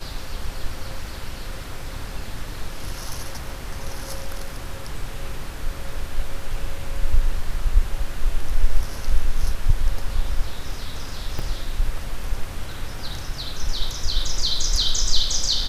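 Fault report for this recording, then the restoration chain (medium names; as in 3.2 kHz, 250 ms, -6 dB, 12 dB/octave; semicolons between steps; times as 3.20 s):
11.39 s: dropout 4.2 ms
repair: interpolate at 11.39 s, 4.2 ms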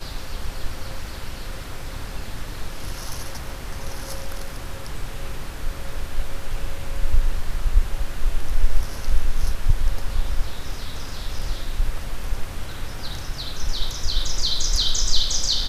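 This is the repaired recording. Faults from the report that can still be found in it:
nothing left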